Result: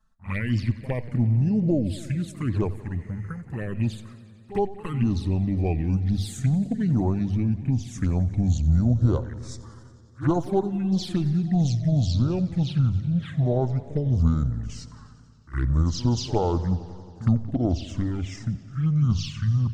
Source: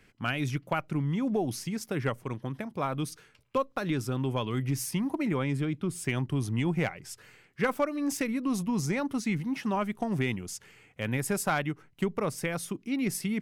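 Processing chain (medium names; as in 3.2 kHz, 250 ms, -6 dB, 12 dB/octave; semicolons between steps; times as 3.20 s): gliding tape speed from 81% -> 55%; gate -54 dBFS, range -13 dB; bass shelf 73 Hz +11 dB; hum notches 50/100 Hz; touch-sensitive flanger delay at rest 4.6 ms, full sweep at -23 dBFS; spectral replace 3.01–3.39 s, 1.7–9.5 kHz before; touch-sensitive phaser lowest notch 370 Hz, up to 2.3 kHz, full sweep at -23.5 dBFS; pre-echo 61 ms -16 dB; modulated delay 90 ms, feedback 78%, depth 103 cents, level -18 dB; trim +5.5 dB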